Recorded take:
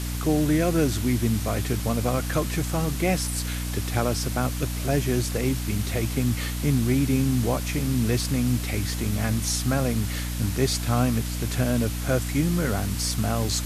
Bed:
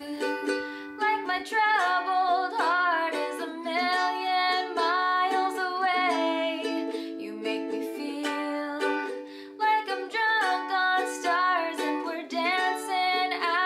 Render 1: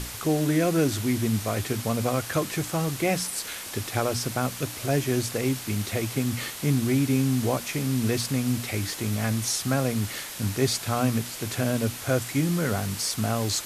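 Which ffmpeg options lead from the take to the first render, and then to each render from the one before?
-af "bandreject=f=60:t=h:w=6,bandreject=f=120:t=h:w=6,bandreject=f=180:t=h:w=6,bandreject=f=240:t=h:w=6,bandreject=f=300:t=h:w=6"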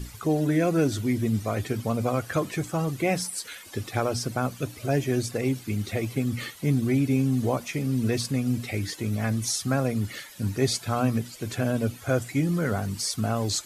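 -af "afftdn=nr=14:nf=-37"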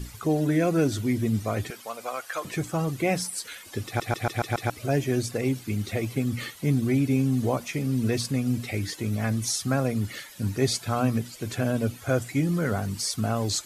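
-filter_complex "[0:a]asettb=1/sr,asplit=3[s0][s1][s2];[s0]atrim=end=1.704[s3];[s1]atrim=start=1.7:end=2.45,asetpts=PTS-STARTPTS,afade=t=in:d=0.004:c=qsin,afade=t=out:st=0.746:d=0.004:c=qsin,highpass=790[s4];[s2]atrim=start=2.446[s5];[s3][s4]acrossfade=d=0.004:c1=hsin:c2=qsin[s6];[s6][s5]acrossfade=d=0.004:c1=qsin:c2=hsin,asplit=7[s7][s8][s9][s10][s11][s12][s13];[s7]atrim=end=4.002[s14];[s8]atrim=start=3.858:end=4.002[s15];[s9]atrim=start=3.858:end=4.002[s16];[s10]atrim=start=3.858:end=4.002[s17];[s11]atrim=start=3.858:end=4.002[s18];[s12]atrim=start=3.858:end=4.002[s19];[s13]atrim=start=4.698[s20];[s14][s15]acrossfade=d=0.004:c1=hsin:c2=hsin[s21];[s21][s16]acrossfade=d=0.004:c1=hsin:c2=hsin[s22];[s22][s17]acrossfade=d=0.004:c1=hsin:c2=hsin[s23];[s23][s18]acrossfade=d=0.004:c1=hsin:c2=hsin[s24];[s24][s19]acrossfade=d=0.004:c1=hsin:c2=hsin[s25];[s25][s20]acrossfade=d=0.004:c1=hsin:c2=hsin"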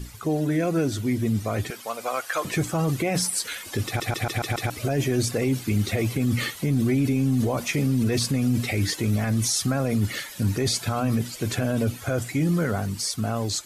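-af "dynaudnorm=f=550:g=7:m=2.51,alimiter=limit=0.178:level=0:latency=1:release=15"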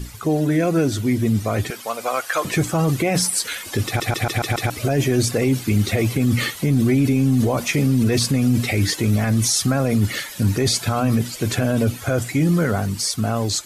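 -af "volume=1.78"

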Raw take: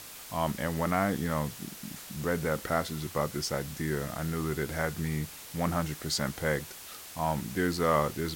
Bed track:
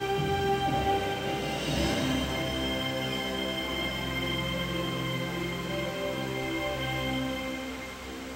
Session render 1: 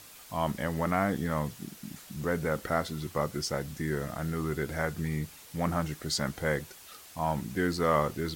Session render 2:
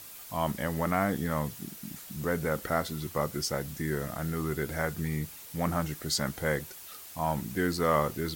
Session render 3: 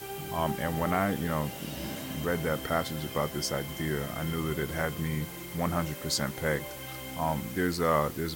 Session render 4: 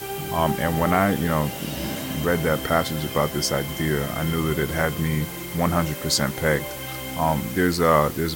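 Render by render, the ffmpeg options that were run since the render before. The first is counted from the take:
-af "afftdn=nr=6:nf=-46"
-af "highshelf=f=12000:g=11.5"
-filter_complex "[1:a]volume=0.299[s0];[0:a][s0]amix=inputs=2:normalize=0"
-af "volume=2.51"

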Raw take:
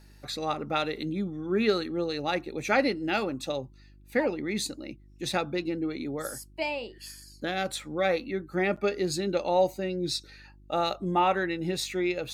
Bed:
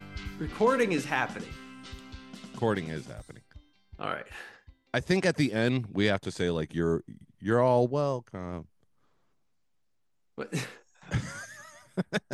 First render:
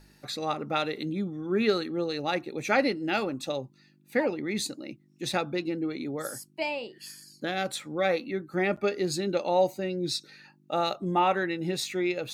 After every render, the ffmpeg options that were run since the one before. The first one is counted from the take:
-af "bandreject=f=50:t=h:w=4,bandreject=f=100:t=h:w=4"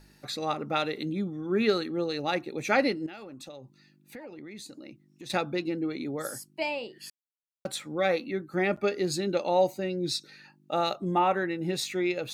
-filter_complex "[0:a]asettb=1/sr,asplit=3[s0][s1][s2];[s0]atrim=end=3.064[s3];[s1]atrim=start=3.06:end=5.3,asetpts=PTS-STARTPTS,afade=t=in:d=0.004:c=qsin,afade=t=out:st=2.236:d=0.004:c=qsin,acompressor=threshold=0.00891:ratio=6:attack=3.2:release=140:knee=1:detection=peak[s4];[s2]atrim=start=5.296[s5];[s3][s4]acrossfade=d=0.004:c1=hsin:c2=qsin[s6];[s6][s5]acrossfade=d=0.004:c1=qsin:c2=hsin,asettb=1/sr,asplit=3[s7][s8][s9];[s7]atrim=end=11.184[s10];[s8]atrim=start=11.18:end=11.69,asetpts=PTS-STARTPTS,afade=t=in:d=0.004:c=qsin,afade=t=out:st=0.506:d=0.004:c=qsin,equalizer=f=4300:t=o:w=1.7:g=-6.5[s11];[s9]atrim=start=11.686[s12];[s10][s11]acrossfade=d=0.004:c1=hsin:c2=qsin[s13];[s13][s12]acrossfade=d=0.004:c1=qsin:c2=hsin,asplit=3[s14][s15][s16];[s14]atrim=end=7.1,asetpts=PTS-STARTPTS,afade=t=out:st=7.096:d=0.004:c=hsin[s17];[s15]atrim=start=7.1:end=7.65,asetpts=PTS-STARTPTS,volume=0[s18];[s16]atrim=start=7.65,asetpts=PTS-STARTPTS,afade=t=in:d=0.004:c=hsin[s19];[s17][s18][s19]concat=n=3:v=0:a=1"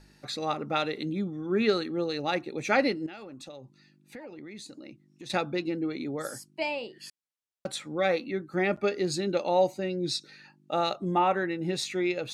-af "lowpass=9600"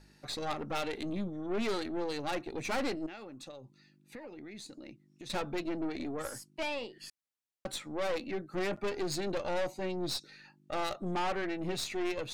-af "aeval=exprs='(tanh(31.6*val(0)+0.6)-tanh(0.6))/31.6':c=same"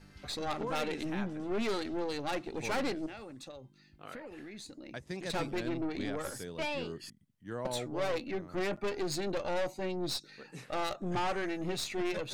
-filter_complex "[1:a]volume=0.178[s0];[0:a][s0]amix=inputs=2:normalize=0"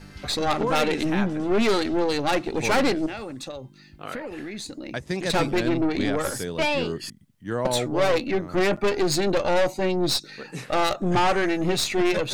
-af "volume=3.98"

